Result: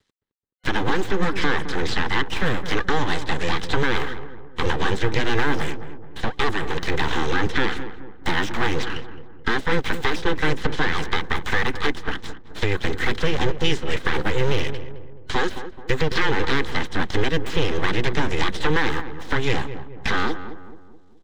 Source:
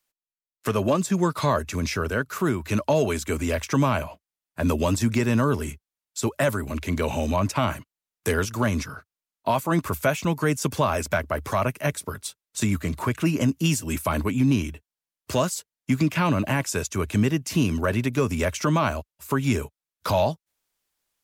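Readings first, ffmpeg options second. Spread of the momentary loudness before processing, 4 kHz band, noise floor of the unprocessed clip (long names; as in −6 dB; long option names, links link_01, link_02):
9 LU, +7.5 dB, below −85 dBFS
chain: -filter_complex "[0:a]highpass=frequency=110:width=0.5412,highpass=frequency=110:width=1.3066,acrossover=split=280|3300[link_01][link_02][link_03];[link_01]acompressor=threshold=-25dB:ratio=4[link_04];[link_02]acompressor=threshold=-26dB:ratio=4[link_05];[link_03]acompressor=threshold=-47dB:ratio=4[link_06];[link_04][link_05][link_06]amix=inputs=3:normalize=0,aeval=exprs='abs(val(0))':channel_layout=same,asplit=2[link_07][link_08];[link_08]alimiter=limit=-23.5dB:level=0:latency=1,volume=-1dB[link_09];[link_07][link_09]amix=inputs=2:normalize=0,acrusher=bits=10:mix=0:aa=0.000001,superequalizer=8b=0.355:11b=1.78:13b=1.78,acrossover=split=420|7500[link_10][link_11][link_12];[link_12]acrusher=samples=38:mix=1:aa=0.000001:lfo=1:lforange=60.8:lforate=0.67[link_13];[link_10][link_11][link_13]amix=inputs=3:normalize=0,asplit=2[link_14][link_15];[link_15]adelay=214,lowpass=frequency=1100:poles=1,volume=-10dB,asplit=2[link_16][link_17];[link_17]adelay=214,lowpass=frequency=1100:poles=1,volume=0.49,asplit=2[link_18][link_19];[link_19]adelay=214,lowpass=frequency=1100:poles=1,volume=0.49,asplit=2[link_20][link_21];[link_21]adelay=214,lowpass=frequency=1100:poles=1,volume=0.49,asplit=2[link_22][link_23];[link_23]adelay=214,lowpass=frequency=1100:poles=1,volume=0.49[link_24];[link_14][link_16][link_18][link_20][link_22][link_24]amix=inputs=6:normalize=0,volume=4dB"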